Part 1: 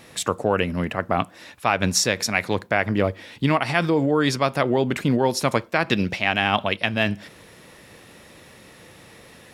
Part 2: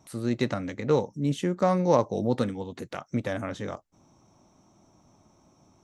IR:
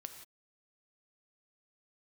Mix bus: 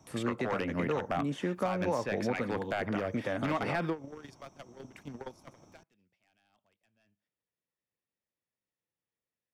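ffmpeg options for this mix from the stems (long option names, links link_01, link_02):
-filter_complex "[0:a]acontrast=30,aeval=exprs='0.398*(abs(mod(val(0)/0.398+3,4)-2)-1)':channel_layout=same,volume=-10dB[link_01];[1:a]volume=0dB,asplit=2[link_02][link_03];[link_03]apad=whole_len=420336[link_04];[link_01][link_04]sidechaingate=range=-45dB:threshold=-56dB:ratio=16:detection=peak[link_05];[link_05][link_02]amix=inputs=2:normalize=0,bandreject=frequency=4000:width=11,acrossover=split=180|760|2800[link_06][link_07][link_08][link_09];[link_06]acompressor=threshold=-43dB:ratio=4[link_10];[link_07]acompressor=threshold=-30dB:ratio=4[link_11];[link_08]acompressor=threshold=-32dB:ratio=4[link_12];[link_09]acompressor=threshold=-54dB:ratio=4[link_13];[link_10][link_11][link_12][link_13]amix=inputs=4:normalize=0,alimiter=limit=-20.5dB:level=0:latency=1:release=236"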